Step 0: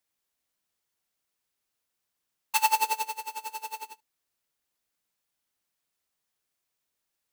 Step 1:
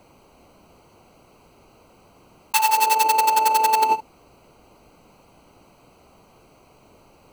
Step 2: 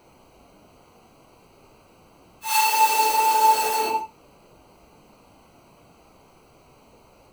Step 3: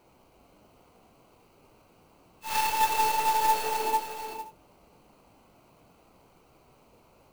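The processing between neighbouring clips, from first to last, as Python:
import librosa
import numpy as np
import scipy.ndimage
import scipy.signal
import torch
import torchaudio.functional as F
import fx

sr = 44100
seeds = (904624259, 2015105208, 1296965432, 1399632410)

y1 = fx.wiener(x, sr, points=25)
y1 = fx.env_flatten(y1, sr, amount_pct=100)
y1 = y1 * librosa.db_to_amplitude(3.0)
y2 = fx.phase_scramble(y1, sr, seeds[0], window_ms=200)
y3 = fx.tracing_dist(y2, sr, depth_ms=0.17)
y3 = y3 + 10.0 ** (-7.5 / 20.0) * np.pad(y3, (int(447 * sr / 1000.0), 0))[:len(y3)]
y3 = fx.clock_jitter(y3, sr, seeds[1], jitter_ms=0.03)
y3 = y3 * librosa.db_to_amplitude(-6.5)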